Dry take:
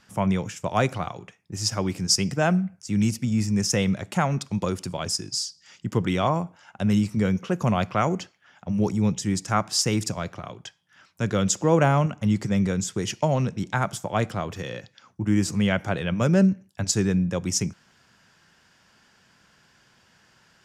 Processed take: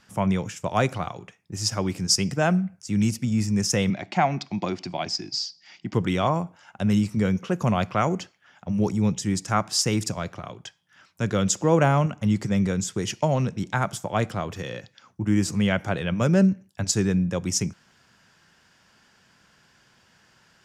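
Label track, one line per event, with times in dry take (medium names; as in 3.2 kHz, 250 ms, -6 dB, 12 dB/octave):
3.900000	5.940000	cabinet simulation 160–5400 Hz, peaks and dips at 330 Hz +5 dB, 480 Hz -10 dB, 730 Hz +9 dB, 1.3 kHz -4 dB, 2.2 kHz +6 dB, 4.6 kHz +4 dB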